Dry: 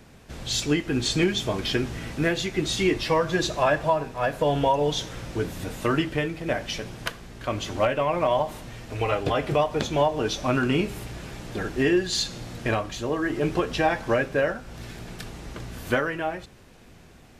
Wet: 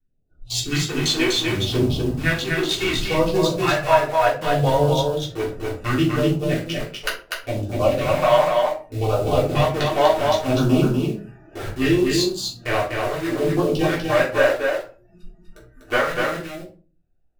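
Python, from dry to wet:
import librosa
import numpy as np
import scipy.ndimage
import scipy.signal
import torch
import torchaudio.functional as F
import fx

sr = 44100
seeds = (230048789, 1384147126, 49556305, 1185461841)

p1 = fx.wiener(x, sr, points=41)
p2 = fx.noise_reduce_blind(p1, sr, reduce_db=27)
p3 = fx.peak_eq(p2, sr, hz=200.0, db=-9.5, octaves=2.3)
p4 = fx.quant_companded(p3, sr, bits=2)
p5 = p3 + (p4 * librosa.db_to_amplitude(-11.5))
p6 = fx.phaser_stages(p5, sr, stages=2, low_hz=130.0, high_hz=2100.0, hz=0.68, feedback_pct=5)
p7 = fx.vibrato(p6, sr, rate_hz=2.5, depth_cents=31.0)
p8 = p7 + fx.echo_single(p7, sr, ms=246, db=-3.5, dry=0)
p9 = fx.room_shoebox(p8, sr, seeds[0], volume_m3=200.0, walls='furnished', distance_m=3.4)
y = p9 * librosa.db_to_amplitude(1.5)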